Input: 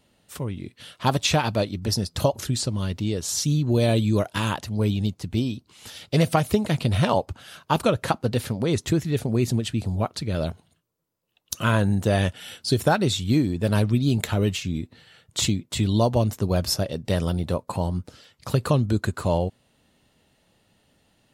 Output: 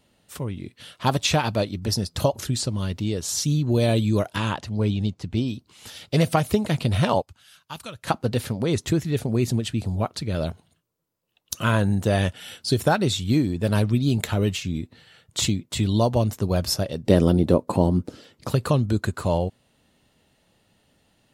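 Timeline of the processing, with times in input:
0:04.36–0:05.48: high-frequency loss of the air 53 metres
0:07.22–0:08.07: guitar amp tone stack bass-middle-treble 5-5-5
0:17.06–0:18.49: parametric band 310 Hz +13 dB 1.8 octaves

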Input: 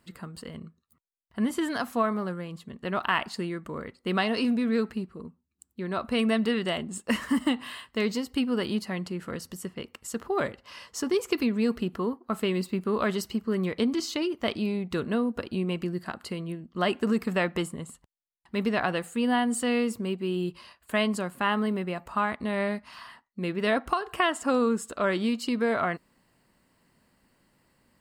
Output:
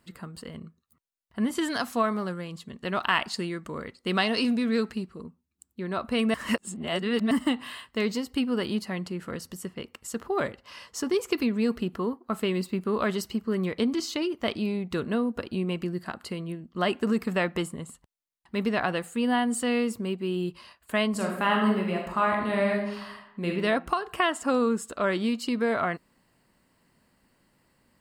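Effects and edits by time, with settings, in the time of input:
0:01.55–0:05.24: parametric band 5,700 Hz +6.5 dB 2.1 octaves
0:06.34–0:07.31: reverse
0:21.10–0:23.49: thrown reverb, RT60 0.85 s, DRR 0 dB

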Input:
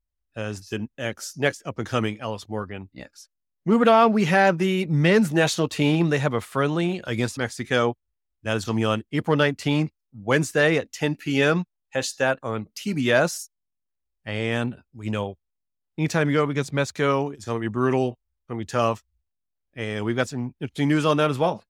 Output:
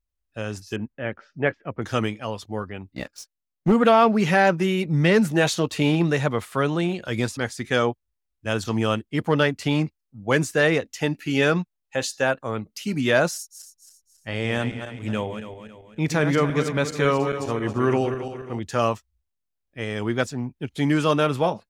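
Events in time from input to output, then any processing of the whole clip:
0:00.76–0:01.82: low-pass filter 2,400 Hz 24 dB per octave
0:02.96–0:03.72: leveller curve on the samples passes 2
0:13.35–0:18.59: feedback delay that plays each chunk backwards 137 ms, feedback 63%, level −8 dB

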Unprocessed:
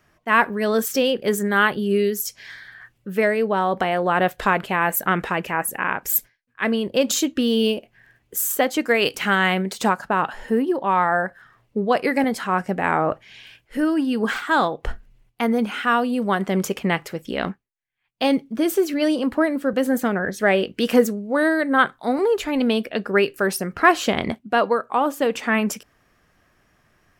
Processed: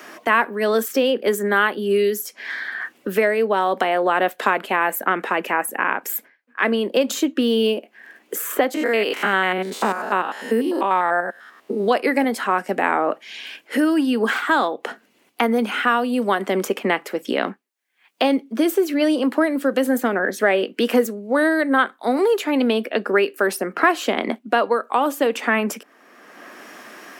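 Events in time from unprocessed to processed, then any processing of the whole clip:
0:08.74–0:11.88: spectrum averaged block by block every 100 ms
whole clip: Butterworth high-pass 230 Hz 36 dB per octave; dynamic equaliser 5,700 Hz, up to −4 dB, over −43 dBFS, Q 0.95; multiband upward and downward compressor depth 70%; level +1.5 dB

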